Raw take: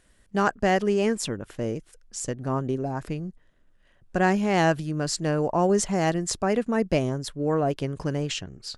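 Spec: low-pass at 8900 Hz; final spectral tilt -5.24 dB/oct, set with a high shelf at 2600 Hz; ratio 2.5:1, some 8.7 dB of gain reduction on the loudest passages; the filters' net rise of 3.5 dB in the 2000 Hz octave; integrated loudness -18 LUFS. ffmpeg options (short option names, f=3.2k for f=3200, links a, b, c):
-af "lowpass=8.9k,equalizer=f=2k:t=o:g=6,highshelf=f=2.6k:g=-4,acompressor=threshold=-30dB:ratio=2.5,volume=14.5dB"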